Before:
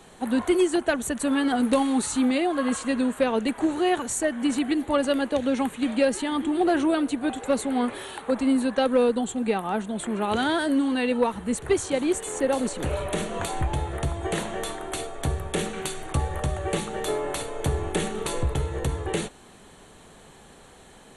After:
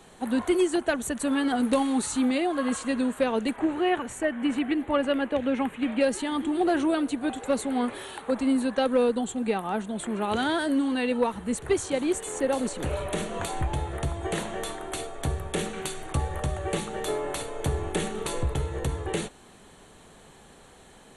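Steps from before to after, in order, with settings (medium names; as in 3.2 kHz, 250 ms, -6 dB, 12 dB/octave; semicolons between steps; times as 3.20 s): 3.56–6.01 s: resonant high shelf 3.5 kHz -9 dB, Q 1.5; trim -2 dB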